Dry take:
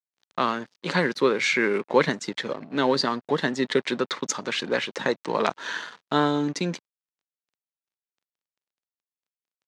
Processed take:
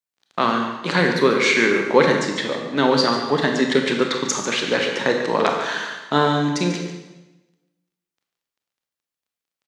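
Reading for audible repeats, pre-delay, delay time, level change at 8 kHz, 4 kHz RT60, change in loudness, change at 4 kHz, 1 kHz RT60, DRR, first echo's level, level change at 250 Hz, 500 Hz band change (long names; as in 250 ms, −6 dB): 1, 25 ms, 144 ms, +6.0 dB, 1.0 s, +6.0 dB, +6.0 dB, 1.0 s, 2.0 dB, −10.5 dB, +6.0 dB, +5.5 dB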